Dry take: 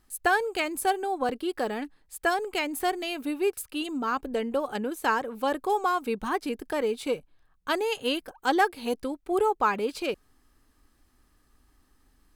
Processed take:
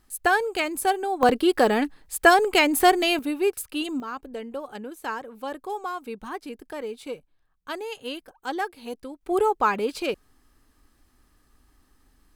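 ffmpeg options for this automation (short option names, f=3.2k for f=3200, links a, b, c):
-af "asetnsamples=n=441:p=0,asendcmd='1.23 volume volume 10dB;3.19 volume volume 3dB;4 volume volume -6dB;9.21 volume volume 2.5dB',volume=2.5dB"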